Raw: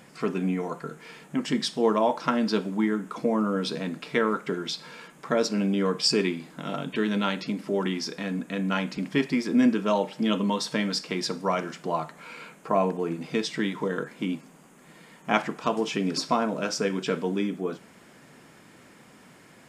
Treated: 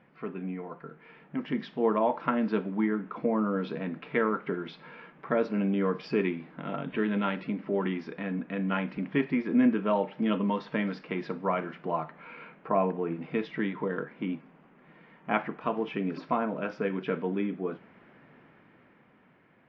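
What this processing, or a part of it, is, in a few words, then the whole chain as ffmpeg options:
action camera in a waterproof case: -af "lowpass=frequency=2600:width=0.5412,lowpass=frequency=2600:width=1.3066,dynaudnorm=framelen=210:gausssize=13:maxgain=7dB,volume=-9dB" -ar 16000 -c:a aac -b:a 48k

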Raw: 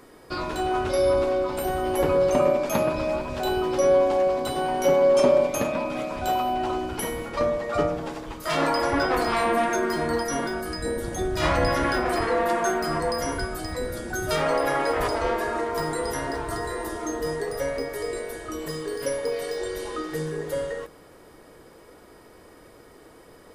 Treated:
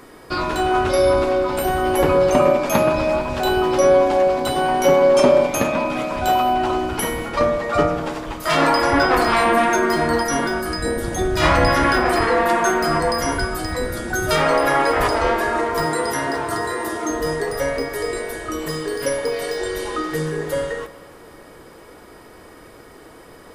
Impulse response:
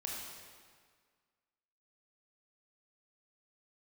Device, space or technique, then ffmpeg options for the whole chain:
filtered reverb send: -filter_complex "[0:a]asettb=1/sr,asplit=3[link_01][link_02][link_03];[link_01]atrim=end=15.864[link_04];[link_02]atrim=start=15.86:end=17.1,asetpts=PTS-STARTPTS,afade=type=in:duration=0.004:curve=qsin,afade=type=out:start_time=1.236:duration=0.004:curve=qsin,highpass=120[link_05];[link_03]atrim=start=17.096[link_06];[link_04][link_05]acrossfade=duration=0.004:curve1=hsin:curve2=qsin[link_07];[link_07][link_06]acrossfade=duration=0.004:curve1=qsin:curve2=hsin,asplit=2[link_08][link_09];[link_09]highpass=frequency=480:width=0.5412,highpass=frequency=480:width=1.3066,lowpass=3700[link_10];[1:a]atrim=start_sample=2205[link_11];[link_10][link_11]afir=irnorm=-1:irlink=0,volume=-10dB[link_12];[link_08][link_12]amix=inputs=2:normalize=0,volume=6.5dB"

